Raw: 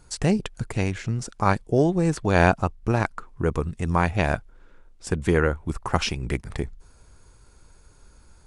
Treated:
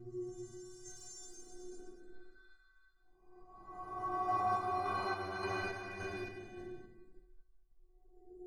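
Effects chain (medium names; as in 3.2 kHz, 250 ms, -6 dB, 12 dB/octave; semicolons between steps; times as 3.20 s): local Wiener filter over 15 samples; dynamic bell 370 Hz, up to +4 dB, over -36 dBFS, Q 1.3; Paulstretch 17×, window 0.10 s, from 1.18 s; inharmonic resonator 360 Hz, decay 0.46 s, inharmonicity 0.008; random-step tremolo; trim +7.5 dB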